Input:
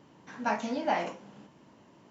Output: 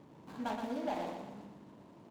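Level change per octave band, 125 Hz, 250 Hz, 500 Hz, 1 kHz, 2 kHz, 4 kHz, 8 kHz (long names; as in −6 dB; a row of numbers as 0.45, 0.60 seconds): −3.0 dB, −4.0 dB, −6.0 dB, −8.5 dB, −12.5 dB, −7.0 dB, can't be measured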